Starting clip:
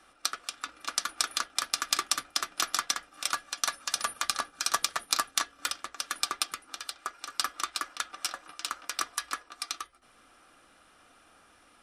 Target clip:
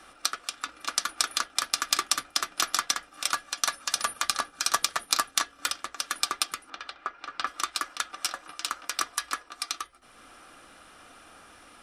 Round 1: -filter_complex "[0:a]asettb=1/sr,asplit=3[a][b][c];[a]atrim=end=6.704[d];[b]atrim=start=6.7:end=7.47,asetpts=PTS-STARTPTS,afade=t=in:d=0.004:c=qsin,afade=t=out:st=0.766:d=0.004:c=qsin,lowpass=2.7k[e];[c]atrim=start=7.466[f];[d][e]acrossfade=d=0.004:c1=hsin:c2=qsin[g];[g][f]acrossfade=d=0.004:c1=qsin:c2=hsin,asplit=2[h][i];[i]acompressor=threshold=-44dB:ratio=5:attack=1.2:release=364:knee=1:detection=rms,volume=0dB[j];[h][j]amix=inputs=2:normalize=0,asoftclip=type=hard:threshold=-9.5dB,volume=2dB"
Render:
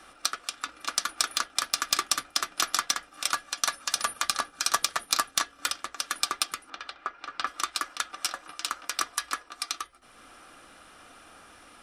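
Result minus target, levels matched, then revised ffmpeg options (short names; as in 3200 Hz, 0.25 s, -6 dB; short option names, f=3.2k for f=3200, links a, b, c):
hard clip: distortion +28 dB
-filter_complex "[0:a]asettb=1/sr,asplit=3[a][b][c];[a]atrim=end=6.704[d];[b]atrim=start=6.7:end=7.47,asetpts=PTS-STARTPTS,afade=t=in:d=0.004:c=qsin,afade=t=out:st=0.766:d=0.004:c=qsin,lowpass=2.7k[e];[c]atrim=start=7.466[f];[d][e]acrossfade=d=0.004:c1=hsin:c2=qsin[g];[g][f]acrossfade=d=0.004:c1=qsin:c2=hsin,asplit=2[h][i];[i]acompressor=threshold=-44dB:ratio=5:attack=1.2:release=364:knee=1:detection=rms,volume=0dB[j];[h][j]amix=inputs=2:normalize=0,asoftclip=type=hard:threshold=-3dB,volume=2dB"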